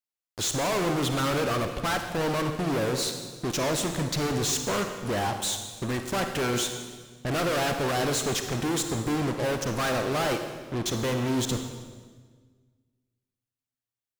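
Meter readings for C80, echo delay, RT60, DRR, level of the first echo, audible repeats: 8.0 dB, none, 1.5 s, 5.5 dB, none, none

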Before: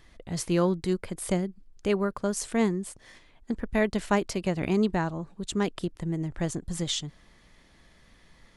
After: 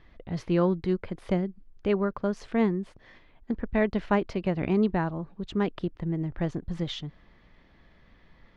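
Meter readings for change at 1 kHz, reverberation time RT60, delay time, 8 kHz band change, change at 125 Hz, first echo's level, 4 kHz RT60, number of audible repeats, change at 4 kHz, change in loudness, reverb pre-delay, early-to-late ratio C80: 0.0 dB, none, none, under -20 dB, +1.0 dB, none, none, none, -6.0 dB, 0.0 dB, none, none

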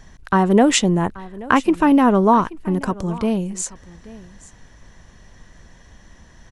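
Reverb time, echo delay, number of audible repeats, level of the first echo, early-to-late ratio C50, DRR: none, 0.831 s, 1, -20.0 dB, none, none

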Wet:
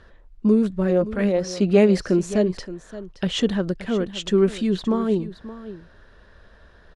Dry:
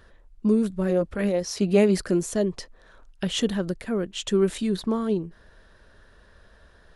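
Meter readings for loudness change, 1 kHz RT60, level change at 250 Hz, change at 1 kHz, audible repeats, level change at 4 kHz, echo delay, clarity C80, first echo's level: +3.5 dB, none, +3.5 dB, +3.5 dB, 1, +1.5 dB, 0.572 s, none, -15.0 dB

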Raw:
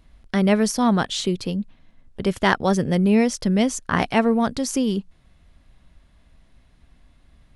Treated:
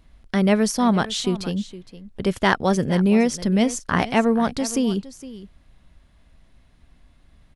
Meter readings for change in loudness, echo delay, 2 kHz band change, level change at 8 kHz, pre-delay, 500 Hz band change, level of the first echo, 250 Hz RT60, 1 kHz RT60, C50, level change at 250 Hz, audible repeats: 0.0 dB, 0.463 s, 0.0 dB, 0.0 dB, none, 0.0 dB, -16.0 dB, none, none, none, 0.0 dB, 1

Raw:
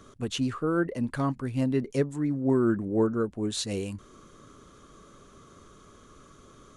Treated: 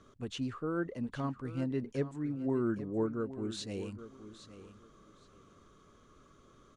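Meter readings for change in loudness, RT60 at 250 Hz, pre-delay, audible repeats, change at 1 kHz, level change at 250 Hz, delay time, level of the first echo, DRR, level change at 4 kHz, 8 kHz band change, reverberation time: -8.0 dB, none, none, 2, -8.0 dB, -8.0 dB, 0.818 s, -13.5 dB, none, -9.5 dB, -12.5 dB, none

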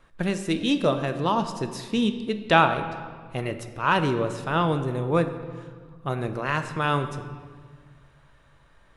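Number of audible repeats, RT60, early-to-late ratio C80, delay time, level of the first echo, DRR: none, 1.6 s, 11.0 dB, none, none, 7.5 dB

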